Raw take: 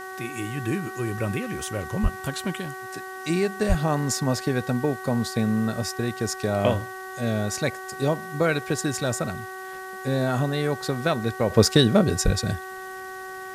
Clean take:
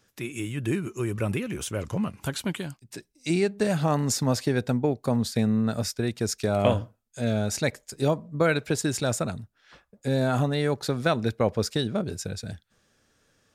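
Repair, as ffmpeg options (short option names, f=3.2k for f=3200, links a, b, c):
-filter_complex "[0:a]bandreject=f=377.1:t=h:w=4,bandreject=f=754.2:t=h:w=4,bandreject=f=1.1313k:t=h:w=4,bandreject=f=1.5084k:t=h:w=4,bandreject=f=1.8855k:t=h:w=4,asplit=3[a][b][c];[a]afade=t=out:st=2.02:d=0.02[d];[b]highpass=f=140:w=0.5412,highpass=f=140:w=1.3066,afade=t=in:st=2.02:d=0.02,afade=t=out:st=2.14:d=0.02[e];[c]afade=t=in:st=2.14:d=0.02[f];[d][e][f]amix=inputs=3:normalize=0,asplit=3[g][h][i];[g]afade=t=out:st=3.68:d=0.02[j];[h]highpass=f=140:w=0.5412,highpass=f=140:w=1.3066,afade=t=in:st=3.68:d=0.02,afade=t=out:st=3.8:d=0.02[k];[i]afade=t=in:st=3.8:d=0.02[l];[j][k][l]amix=inputs=3:normalize=0,asplit=3[m][n][o];[m]afade=t=out:st=12.24:d=0.02[p];[n]highpass=f=140:w=0.5412,highpass=f=140:w=1.3066,afade=t=in:st=12.24:d=0.02,afade=t=out:st=12.36:d=0.02[q];[o]afade=t=in:st=12.36:d=0.02[r];[p][q][r]amix=inputs=3:normalize=0,afwtdn=0.0035,asetnsamples=n=441:p=0,asendcmd='11.5 volume volume -9.5dB',volume=0dB"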